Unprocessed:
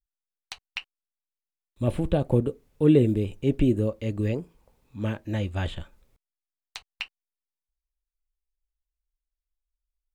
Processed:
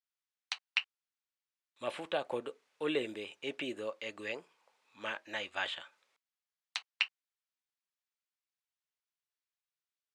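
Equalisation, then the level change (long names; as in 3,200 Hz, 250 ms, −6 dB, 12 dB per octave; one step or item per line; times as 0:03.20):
high-pass filter 1,100 Hz 12 dB per octave
high-frequency loss of the air 80 metres
+4.0 dB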